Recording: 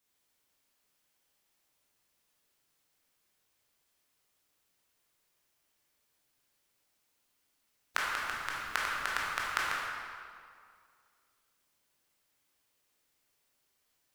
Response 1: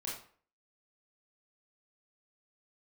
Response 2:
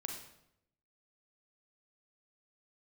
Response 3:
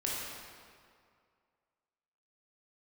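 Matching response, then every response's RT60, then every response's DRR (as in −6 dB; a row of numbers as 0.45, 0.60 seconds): 3; 0.50, 0.80, 2.2 seconds; −5.5, 1.5, −5.0 decibels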